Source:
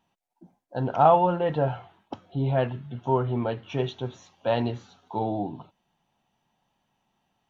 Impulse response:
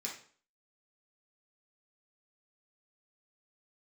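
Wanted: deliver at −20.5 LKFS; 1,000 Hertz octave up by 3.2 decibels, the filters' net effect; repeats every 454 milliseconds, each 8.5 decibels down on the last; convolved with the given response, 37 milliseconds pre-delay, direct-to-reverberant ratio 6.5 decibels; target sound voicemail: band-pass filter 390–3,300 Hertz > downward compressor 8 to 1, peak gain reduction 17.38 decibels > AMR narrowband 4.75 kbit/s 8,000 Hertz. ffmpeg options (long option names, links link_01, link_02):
-filter_complex "[0:a]equalizer=frequency=1000:width_type=o:gain=4.5,aecho=1:1:454|908|1362|1816:0.376|0.143|0.0543|0.0206,asplit=2[link_01][link_02];[1:a]atrim=start_sample=2205,adelay=37[link_03];[link_02][link_03]afir=irnorm=-1:irlink=0,volume=-6.5dB[link_04];[link_01][link_04]amix=inputs=2:normalize=0,highpass=390,lowpass=3300,acompressor=threshold=-28dB:ratio=8,volume=15.5dB" -ar 8000 -c:a libopencore_amrnb -b:a 4750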